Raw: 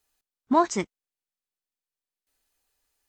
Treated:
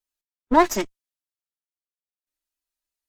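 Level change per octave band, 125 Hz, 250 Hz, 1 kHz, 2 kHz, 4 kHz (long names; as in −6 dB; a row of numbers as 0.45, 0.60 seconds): −1.0, +3.0, +4.0, +8.0, +6.0 decibels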